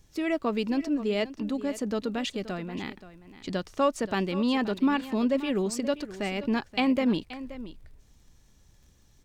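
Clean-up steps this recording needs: de-click; expander -50 dBFS, range -21 dB; inverse comb 0.527 s -15 dB

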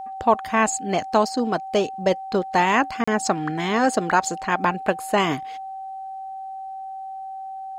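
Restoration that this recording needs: notch 770 Hz, Q 30; interpolate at 3.04, 35 ms

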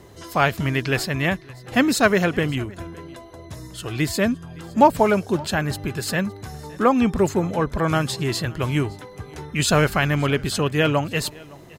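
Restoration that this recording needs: inverse comb 0.564 s -23.5 dB

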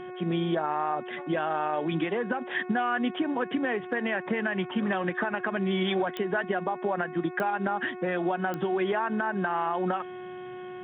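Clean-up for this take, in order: de-click; de-hum 365 Hz, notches 7

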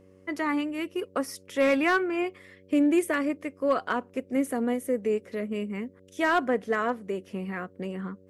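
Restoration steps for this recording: clip repair -15.5 dBFS; de-hum 94.1 Hz, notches 6

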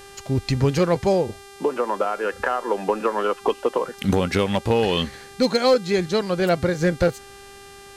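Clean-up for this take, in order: clip repair -10.5 dBFS; de-hum 397.4 Hz, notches 30

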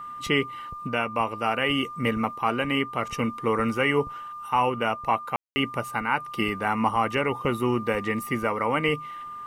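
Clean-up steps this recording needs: notch 1200 Hz, Q 30; room tone fill 5.36–5.56

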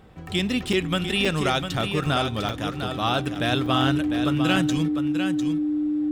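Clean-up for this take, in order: clip repair -11.5 dBFS; notch 300 Hz, Q 30; interpolate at 0.73/1.25/2.06/2.49/3.35/3.66/4.56, 3.3 ms; inverse comb 0.701 s -7.5 dB

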